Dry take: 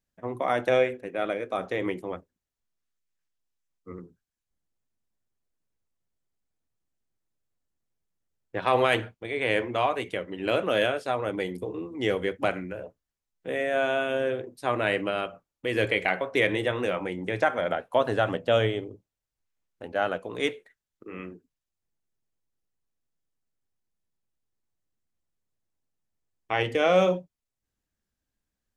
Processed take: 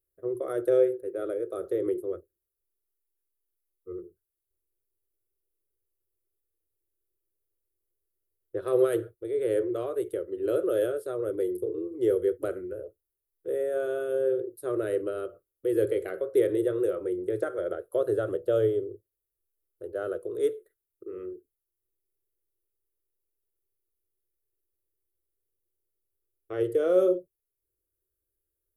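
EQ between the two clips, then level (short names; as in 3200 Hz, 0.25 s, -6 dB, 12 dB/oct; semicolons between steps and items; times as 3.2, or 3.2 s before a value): EQ curve 100 Hz 0 dB, 240 Hz -20 dB, 360 Hz +11 dB, 550 Hz +2 dB, 870 Hz -24 dB, 1300 Hz -5 dB, 2400 Hz -23 dB, 3800 Hz -12 dB, 6100 Hz -13 dB, 11000 Hz +12 dB; -3.0 dB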